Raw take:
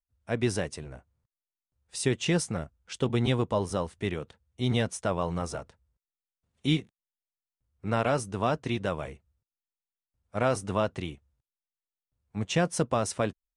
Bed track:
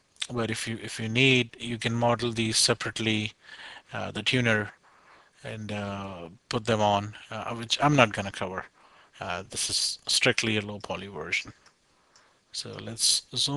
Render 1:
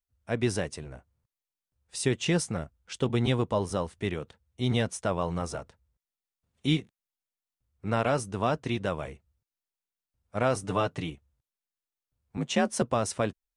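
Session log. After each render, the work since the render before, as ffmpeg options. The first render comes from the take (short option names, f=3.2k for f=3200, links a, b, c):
-filter_complex "[0:a]asettb=1/sr,asplit=3[a][b][c];[a]atrim=end=10.634[d];[b]atrim=start=10.63:end=11.1,asetpts=PTS-STARTPTS,afade=t=in:d=0.004:c=qsin,afade=t=out:st=0.466:d=0.004:c=qsin,aecho=1:1:6.8:0.65,atrim=end_sample=20727[e];[c]atrim=start=11.096[f];[d][e]acrossfade=d=0.004:c1=hsin:c2=qsin[g];[g][f]acrossfade=d=0.004:c1=qsin:c2=hsin,asettb=1/sr,asplit=3[h][i][j];[h]atrim=end=12.374[k];[i]atrim=start=12.37:end=12.82,asetpts=PTS-STARTPTS,afade=t=in:d=0.004:c=qsin,afade=t=out:st=0.446:d=0.004:c=qsin,afreqshift=48[l];[j]atrim=start=12.816[m];[k][l]acrossfade=d=0.004:c1=hsin:c2=qsin[n];[n][m]acrossfade=d=0.004:c1=qsin:c2=hsin"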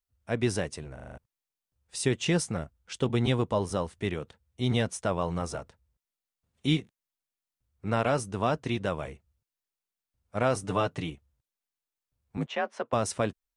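-filter_complex "[0:a]asettb=1/sr,asplit=3[a][b][c];[a]atrim=end=12.464[d];[b]atrim=start=12.46:end=12.93,asetpts=PTS-STARTPTS,afade=t=in:d=0.004:c=qsin,afade=t=out:st=0.466:d=0.004:c=qsin,highpass=570,lowpass=2.3k[e];[c]atrim=start=12.926[f];[d][e]acrossfade=d=0.004:c1=hsin:c2=qsin[g];[g][f]acrossfade=d=0.004:c1=qsin:c2=hsin,asplit=7[h][i][j][k][l][m][n];[h]atrim=end=0.982[o];[i]atrim=start=0.938:end=0.982[p];[j]atrim=start=0.938:end=0.982[q];[k]atrim=start=0.938:end=0.982[r];[l]atrim=start=0.938:end=0.982[s];[m]atrim=start=0.938:end=0.982[t];[n]atrim=start=1.178[u];[o][p]acrossfade=d=0.004:c1=hsin:c2=hsin[v];[v][q]acrossfade=d=0.004:c1=hsin:c2=hsin[w];[w][r]acrossfade=d=0.004:c1=hsin:c2=hsin[x];[x][s]acrossfade=d=0.004:c1=hsin:c2=hsin[y];[y][t]acrossfade=d=0.004:c1=hsin:c2=hsin[z];[z][u]acrossfade=d=0.004:c1=hsin:c2=hsin"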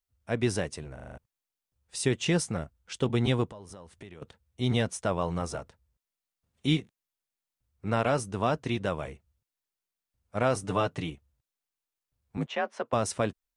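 -filter_complex "[0:a]asettb=1/sr,asplit=3[a][b][c];[a]atrim=end=3.504[d];[b]atrim=start=3.5:end=4.22,asetpts=PTS-STARTPTS,afade=t=in:d=0.004:c=qsin,afade=t=out:st=0.716:d=0.004:c=qsin,acompressor=threshold=-43dB:ratio=6:attack=3.2:release=140:knee=1:detection=peak[e];[c]atrim=start=4.216[f];[d][e]acrossfade=d=0.004:c1=hsin:c2=qsin[g];[g][f]acrossfade=d=0.004:c1=qsin:c2=hsin"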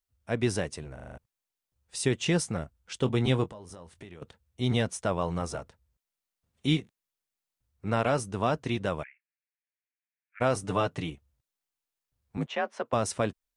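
-filter_complex "[0:a]asettb=1/sr,asplit=3[a][b][c];[a]atrim=end=2.984[d];[b]atrim=start=2.98:end=4.17,asetpts=PTS-STARTPTS,afade=t=in:d=0.004:c=qsin,afade=t=out:st=1.186:d=0.004:c=qsin,asplit=2[e][f];[f]adelay=23,volume=-13dB[g];[e][g]amix=inputs=2:normalize=0,atrim=end_sample=52479[h];[c]atrim=start=4.166[i];[d][h]acrossfade=d=0.004:c1=hsin:c2=qsin[j];[j][i]acrossfade=d=0.004:c1=qsin:c2=hsin,asplit=3[k][l][m];[k]afade=t=out:st=9.02:d=0.02[n];[l]asuperpass=centerf=2000:order=8:qfactor=1.9,afade=t=in:st=9.02:d=0.02,afade=t=out:st=10.4:d=0.02[o];[m]afade=t=in:st=10.4:d=0.02[p];[n][o][p]amix=inputs=3:normalize=0"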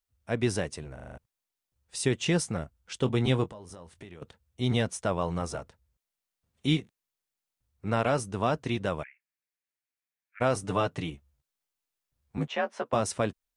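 -filter_complex "[0:a]asettb=1/sr,asplit=3[a][b][c];[a]atrim=end=11.124[d];[b]atrim=start=11.12:end=13.01,asetpts=PTS-STARTPTS,afade=t=in:d=0.004:c=qsin,afade=t=out:st=1.886:d=0.004:c=qsin,asplit=2[e][f];[f]adelay=14,volume=-7dB[g];[e][g]amix=inputs=2:normalize=0,atrim=end_sample=83349[h];[c]atrim=start=13.006[i];[d][h]acrossfade=d=0.004:c1=hsin:c2=qsin[j];[j][i]acrossfade=d=0.004:c1=qsin:c2=hsin"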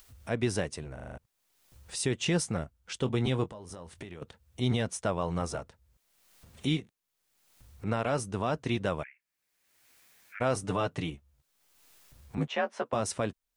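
-af "alimiter=limit=-17.5dB:level=0:latency=1:release=149,acompressor=mode=upward:threshold=-37dB:ratio=2.5"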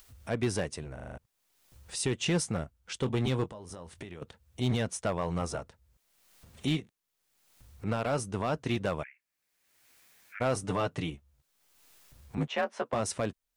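-af "volume=22dB,asoftclip=hard,volume=-22dB"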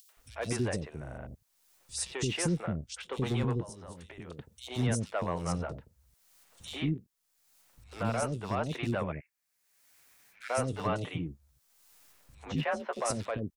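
-filter_complex "[0:a]acrossover=split=420|3400[a][b][c];[b]adelay=90[d];[a]adelay=170[e];[e][d][c]amix=inputs=3:normalize=0"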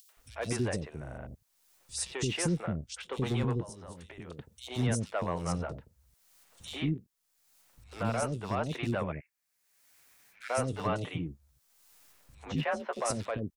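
-af anull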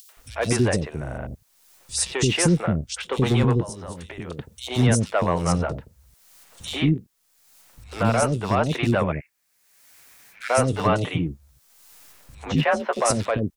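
-af "volume=11dB"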